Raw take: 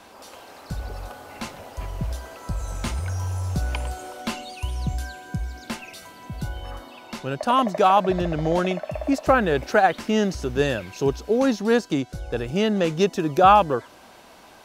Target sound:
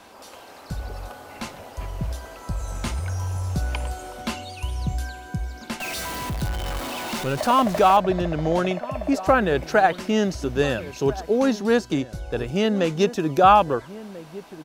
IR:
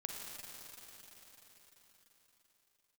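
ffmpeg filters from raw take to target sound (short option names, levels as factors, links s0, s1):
-filter_complex "[0:a]asettb=1/sr,asplit=3[s0][s1][s2];[s0]atrim=end=5.804[s3];[s1]atrim=start=5.8:end=7.97,asetpts=PTS-STARTPTS,afade=t=in:d=0.004:c=qsin,afade=t=out:st=2.166:d=0.004:c=qsin,aeval=exprs='val(0)+0.5*0.0473*sgn(val(0))':c=same[s4];[s2]atrim=start=7.966[s5];[s3][s4]acrossfade=d=0.004:c1=hsin:c2=qsin[s6];[s6][s5]acrossfade=d=0.004:c1=qsin:c2=hsin,asplit=2[s7][s8];[s8]adelay=1341,volume=0.158,highshelf=f=4000:g=-30.2[s9];[s7][s9]amix=inputs=2:normalize=0"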